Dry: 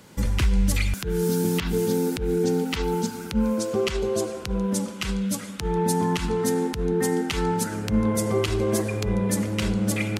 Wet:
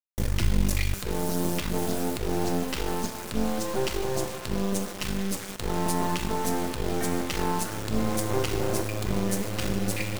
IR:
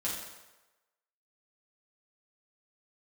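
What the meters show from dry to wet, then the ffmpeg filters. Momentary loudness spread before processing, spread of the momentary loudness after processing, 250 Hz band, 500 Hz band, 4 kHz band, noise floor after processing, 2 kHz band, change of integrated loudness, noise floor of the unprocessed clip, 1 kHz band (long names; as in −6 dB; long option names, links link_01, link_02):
4 LU, 4 LU, −5.0 dB, −5.5 dB, −1.5 dB, −37 dBFS, −2.0 dB, −4.0 dB, −36 dBFS, −0.5 dB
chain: -filter_complex "[0:a]acrusher=bits=3:dc=4:mix=0:aa=0.000001,asplit=2[link_01][link_02];[1:a]atrim=start_sample=2205,asetrate=79380,aresample=44100[link_03];[link_02][link_03]afir=irnorm=-1:irlink=0,volume=-4.5dB[link_04];[link_01][link_04]amix=inputs=2:normalize=0,volume=-2dB"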